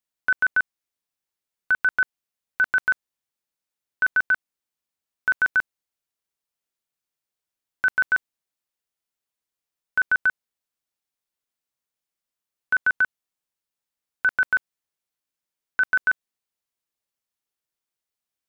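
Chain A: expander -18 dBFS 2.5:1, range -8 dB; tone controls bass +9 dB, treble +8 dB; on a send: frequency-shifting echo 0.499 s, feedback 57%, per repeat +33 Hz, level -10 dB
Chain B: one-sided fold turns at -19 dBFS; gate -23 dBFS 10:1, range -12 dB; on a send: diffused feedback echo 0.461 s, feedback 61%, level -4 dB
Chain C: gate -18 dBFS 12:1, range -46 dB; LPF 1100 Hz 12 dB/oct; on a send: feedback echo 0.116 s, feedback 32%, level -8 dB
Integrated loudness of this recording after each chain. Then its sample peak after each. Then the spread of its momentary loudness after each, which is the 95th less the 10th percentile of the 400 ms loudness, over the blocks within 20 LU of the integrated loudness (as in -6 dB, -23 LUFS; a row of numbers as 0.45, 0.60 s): -26.5, -27.5, -35.0 LUFS; -13.0, -12.5, -23.0 dBFS; 20, 16, 21 LU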